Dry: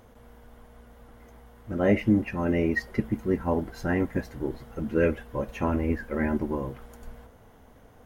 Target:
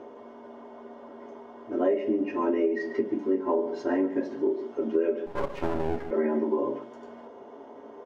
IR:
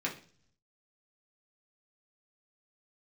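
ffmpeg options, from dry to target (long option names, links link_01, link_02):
-filter_complex "[0:a]highpass=290,equalizer=frequency=410:width_type=q:width=4:gain=8,equalizer=frequency=590:width_type=q:width=4:gain=3,equalizer=frequency=940:width_type=q:width=4:gain=6,equalizer=frequency=1600:width_type=q:width=4:gain=-5,equalizer=frequency=2400:width_type=q:width=4:gain=-9,equalizer=frequency=3900:width_type=q:width=4:gain=-6,lowpass=frequency=6000:width=0.5412,lowpass=frequency=6000:width=1.3066,aecho=1:1:3.2:0.41,acrossover=split=1900[link_01][link_02];[link_01]acompressor=mode=upward:threshold=-40dB:ratio=2.5[link_03];[link_03][link_02]amix=inputs=2:normalize=0,asplit=2[link_04][link_05];[link_05]adelay=139.9,volume=-15dB,highshelf=frequency=4000:gain=-3.15[link_06];[link_04][link_06]amix=inputs=2:normalize=0[link_07];[1:a]atrim=start_sample=2205,asetrate=61740,aresample=44100[link_08];[link_07][link_08]afir=irnorm=-1:irlink=0,asettb=1/sr,asplit=3[link_09][link_10][link_11];[link_09]atrim=end=5.264[link_12];[link_10]atrim=start=5.26:end=6.11,asetpts=PTS-STARTPTS,afade=type=in:duration=0.004:curve=qsin,afade=type=out:start_time=0.846:duration=0.004:curve=qsin,aeval=exprs='max(val(0),0)':channel_layout=same[link_13];[link_11]atrim=start=6.106[link_14];[link_12][link_13]acrossfade=duration=0.004:curve1=hsin:curve2=qsin[link_15];[link_15][link_14]acrossfade=duration=0.004:curve1=qsin:curve2=hsin,acompressor=threshold=-22dB:ratio=6"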